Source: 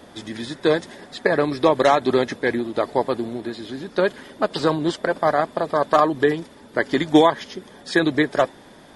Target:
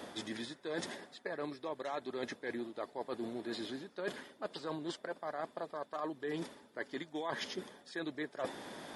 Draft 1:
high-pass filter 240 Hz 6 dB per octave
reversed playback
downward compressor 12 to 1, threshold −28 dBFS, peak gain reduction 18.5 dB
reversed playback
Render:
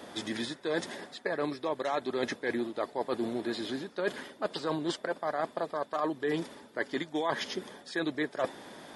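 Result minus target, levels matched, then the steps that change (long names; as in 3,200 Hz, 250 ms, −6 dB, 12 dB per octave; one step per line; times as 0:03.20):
downward compressor: peak gain reduction −8 dB
change: downward compressor 12 to 1, threshold −37 dBFS, peak gain reduction 27 dB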